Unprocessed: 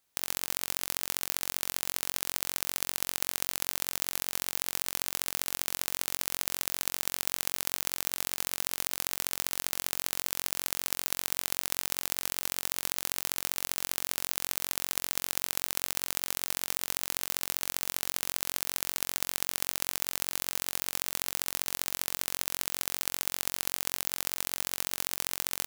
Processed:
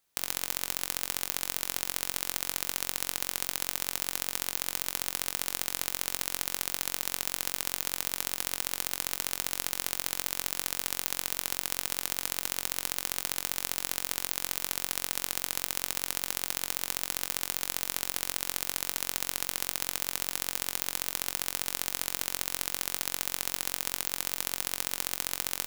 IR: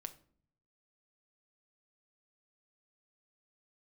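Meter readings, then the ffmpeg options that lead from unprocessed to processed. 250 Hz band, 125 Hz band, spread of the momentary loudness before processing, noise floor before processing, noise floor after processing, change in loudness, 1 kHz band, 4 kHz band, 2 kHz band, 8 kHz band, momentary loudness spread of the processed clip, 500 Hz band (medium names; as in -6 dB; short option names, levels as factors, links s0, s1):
+0.5 dB, 0.0 dB, 0 LU, -75 dBFS, -49 dBFS, 0.0 dB, +0.5 dB, +0.5 dB, 0.0 dB, 0.0 dB, 0 LU, 0.0 dB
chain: -filter_complex "[0:a]asplit=2[s0][s1];[1:a]atrim=start_sample=2205,atrim=end_sample=3087[s2];[s1][s2]afir=irnorm=-1:irlink=0,volume=2.11[s3];[s0][s3]amix=inputs=2:normalize=0,volume=0.447"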